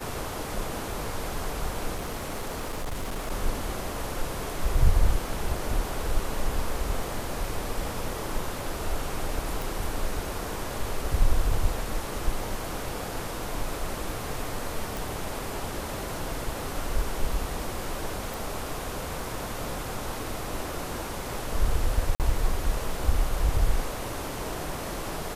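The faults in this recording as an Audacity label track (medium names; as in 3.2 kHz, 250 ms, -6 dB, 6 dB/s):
1.950000	3.320000	clipped -27.5 dBFS
9.620000	9.620000	pop
14.970000	14.970000	pop
18.340000	18.340000	pop
22.150000	22.200000	dropout 48 ms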